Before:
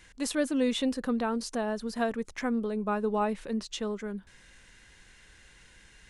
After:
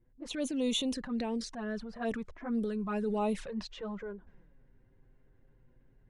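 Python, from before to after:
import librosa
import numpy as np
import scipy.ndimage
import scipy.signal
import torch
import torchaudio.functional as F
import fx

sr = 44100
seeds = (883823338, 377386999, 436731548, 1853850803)

y = fx.transient(x, sr, attack_db=-6, sustain_db=4)
y = fx.high_shelf(y, sr, hz=4300.0, db=8.0)
y = fx.env_flanger(y, sr, rest_ms=9.3, full_db=-25.0)
y = fx.rider(y, sr, range_db=4, speed_s=2.0)
y = fx.env_lowpass(y, sr, base_hz=350.0, full_db=-25.0)
y = y * 10.0 ** (-2.5 / 20.0)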